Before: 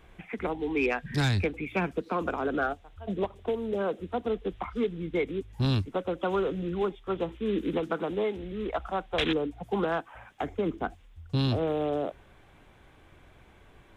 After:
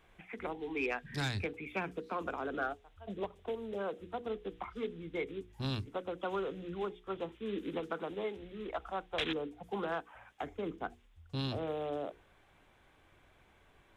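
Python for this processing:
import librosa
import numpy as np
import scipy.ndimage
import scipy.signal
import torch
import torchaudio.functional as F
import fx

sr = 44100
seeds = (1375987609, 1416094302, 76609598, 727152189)

y = fx.low_shelf(x, sr, hz=410.0, db=-5.0)
y = fx.hum_notches(y, sr, base_hz=60, count=8)
y = F.gain(torch.from_numpy(y), -6.0).numpy()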